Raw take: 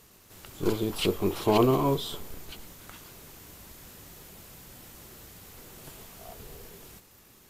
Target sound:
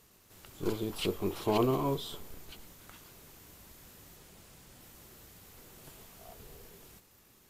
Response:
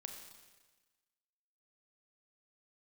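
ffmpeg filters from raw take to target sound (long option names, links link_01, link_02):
-filter_complex "[0:a]asettb=1/sr,asplit=3[link_01][link_02][link_03];[link_01]atrim=end=4.164[link_04];[link_02]atrim=start=4.16:end=4.81,asetpts=PTS-STARTPTS,afade=type=in:duration=0.004:curve=qsin,afade=type=out:start_time=0.646:duration=0.004:curve=qsin,equalizer=frequency=13000:width=3.7:gain=-10.5[link_05];[link_03]atrim=start=4.806[link_06];[link_04][link_05]acrossfade=duration=0.004:curve1=hsin:curve2=qsin[link_07];[link_07][link_06]acrossfade=duration=0.004:curve1=qsin:curve2=hsin,volume=-6dB"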